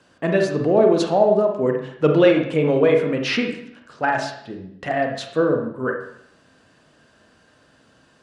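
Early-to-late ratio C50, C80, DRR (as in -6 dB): 5.5 dB, 9.0 dB, 2.5 dB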